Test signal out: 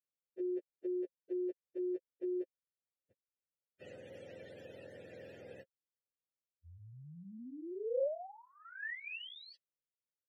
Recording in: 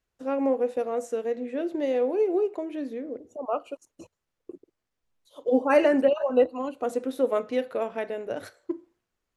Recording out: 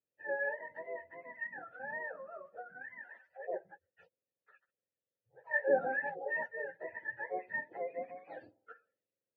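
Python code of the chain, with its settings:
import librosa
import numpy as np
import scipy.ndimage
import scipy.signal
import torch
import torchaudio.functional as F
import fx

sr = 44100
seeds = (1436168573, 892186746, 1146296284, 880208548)

y = fx.octave_mirror(x, sr, pivot_hz=680.0)
y = fx.vowel_filter(y, sr, vowel='e')
y = y * librosa.db_to_amplitude(3.5)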